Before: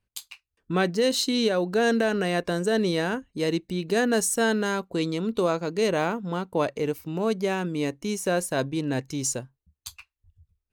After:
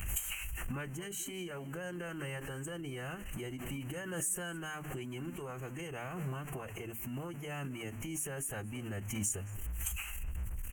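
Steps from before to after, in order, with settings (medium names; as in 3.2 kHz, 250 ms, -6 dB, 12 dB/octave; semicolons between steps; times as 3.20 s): jump at every zero crossing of -37.5 dBFS; Butterworth band-stop 4.6 kHz, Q 1; compression 12:1, threshold -34 dBFS, peak gain reduction 16.5 dB; amplifier tone stack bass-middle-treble 5-5-5; hum notches 50/100/150/200/250/300/350/400 Hz; echo from a far wall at 38 m, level -19 dB; formant-preserving pitch shift -4.5 st; bass shelf 150 Hz +10 dB; swell ahead of each attack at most 41 dB/s; trim +11 dB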